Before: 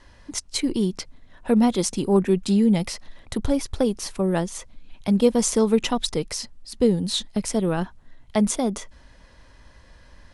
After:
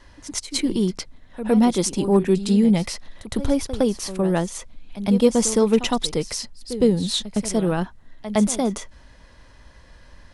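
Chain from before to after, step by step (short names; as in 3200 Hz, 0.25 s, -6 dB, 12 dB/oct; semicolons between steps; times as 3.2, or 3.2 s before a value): pre-echo 0.111 s -13 dB; gain +1.5 dB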